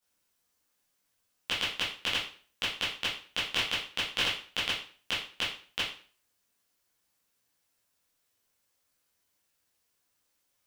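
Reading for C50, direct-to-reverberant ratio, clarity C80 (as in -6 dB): 4.0 dB, -10.0 dB, 9.5 dB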